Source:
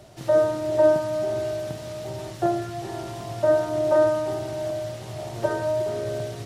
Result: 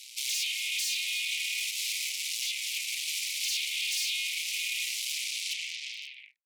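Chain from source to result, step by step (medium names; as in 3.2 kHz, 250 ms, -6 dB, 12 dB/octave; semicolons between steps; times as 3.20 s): tape stop on the ending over 1.38 s; in parallel at +1 dB: compression 12:1, threshold -26 dBFS, peak gain reduction 13.5 dB; on the sum: hard clipper -14 dBFS, distortion -15 dB; peak limiter -20 dBFS, peak gain reduction 6 dB; Chebyshev shaper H 6 -10 dB, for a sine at -20 dBFS; steep high-pass 2.2 kHz 96 dB/octave; trim +4 dB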